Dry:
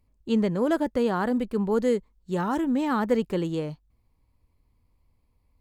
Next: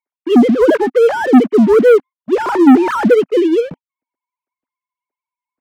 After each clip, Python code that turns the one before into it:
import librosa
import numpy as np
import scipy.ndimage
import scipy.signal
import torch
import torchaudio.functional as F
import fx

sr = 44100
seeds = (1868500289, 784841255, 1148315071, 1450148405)

y = fx.sine_speech(x, sr)
y = fx.peak_eq(y, sr, hz=260.0, db=8.0, octaves=0.41)
y = fx.leveller(y, sr, passes=3)
y = y * 10.0 ** (4.0 / 20.0)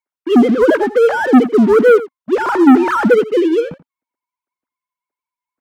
y = fx.peak_eq(x, sr, hz=1400.0, db=5.0, octaves=0.58)
y = y + 10.0 ** (-16.5 / 20.0) * np.pad(y, (int(85 * sr / 1000.0), 0))[:len(y)]
y = y * 10.0 ** (-1.0 / 20.0)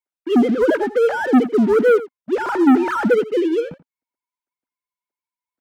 y = fx.notch(x, sr, hz=1100.0, q=7.5)
y = y * 10.0 ** (-5.0 / 20.0)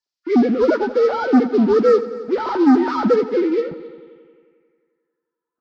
y = fx.freq_compress(x, sr, knee_hz=1100.0, ratio=1.5)
y = fx.echo_heads(y, sr, ms=89, heads='all three', feedback_pct=49, wet_db=-21.5)
y = fx.filter_sweep_lowpass(y, sr, from_hz=5000.0, to_hz=1300.0, start_s=3.58, end_s=5.54, q=3.5)